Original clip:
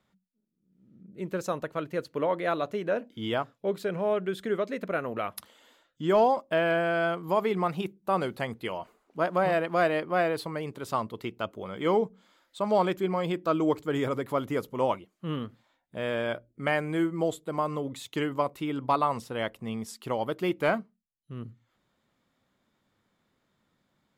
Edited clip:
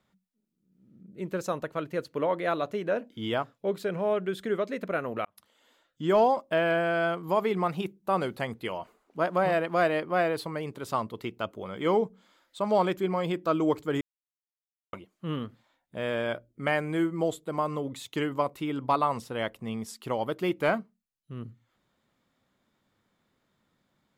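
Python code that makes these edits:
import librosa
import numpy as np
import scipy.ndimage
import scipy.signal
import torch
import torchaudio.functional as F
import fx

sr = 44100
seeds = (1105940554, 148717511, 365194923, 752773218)

y = fx.edit(x, sr, fx.fade_in_span(start_s=5.25, length_s=0.77),
    fx.silence(start_s=14.01, length_s=0.92), tone=tone)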